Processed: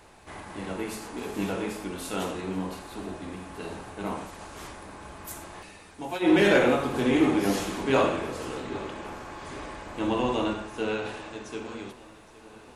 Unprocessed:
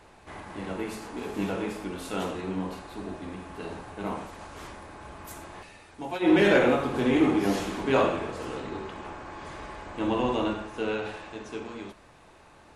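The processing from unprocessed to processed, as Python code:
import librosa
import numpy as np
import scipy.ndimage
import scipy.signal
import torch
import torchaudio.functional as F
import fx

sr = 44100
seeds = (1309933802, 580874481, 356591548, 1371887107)

y = fx.high_shelf(x, sr, hz=5700.0, db=7.5)
y = fx.echo_feedback(y, sr, ms=815, feedback_pct=55, wet_db=-19)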